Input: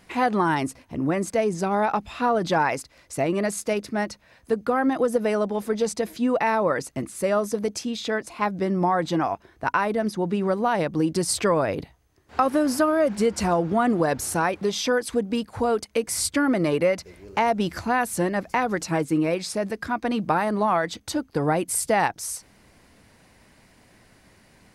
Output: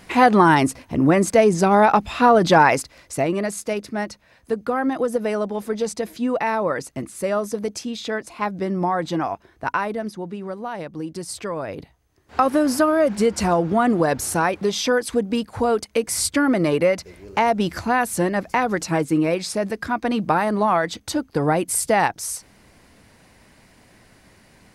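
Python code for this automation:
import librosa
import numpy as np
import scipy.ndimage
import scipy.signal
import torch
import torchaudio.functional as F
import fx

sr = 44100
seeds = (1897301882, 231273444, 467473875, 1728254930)

y = fx.gain(x, sr, db=fx.line((2.78, 8.0), (3.47, 0.0), (9.76, 0.0), (10.38, -7.5), (11.48, -7.5), (12.41, 3.0)))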